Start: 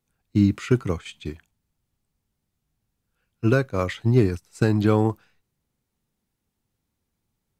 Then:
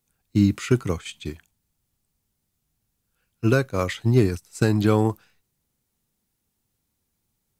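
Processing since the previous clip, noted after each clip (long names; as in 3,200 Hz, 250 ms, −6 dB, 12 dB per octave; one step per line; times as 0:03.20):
high-shelf EQ 4,900 Hz +9 dB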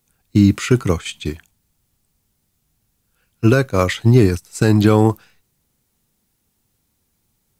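boost into a limiter +9 dB
level −1 dB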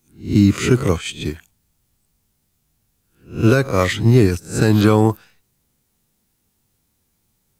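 peak hold with a rise ahead of every peak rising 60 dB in 0.35 s
level −1 dB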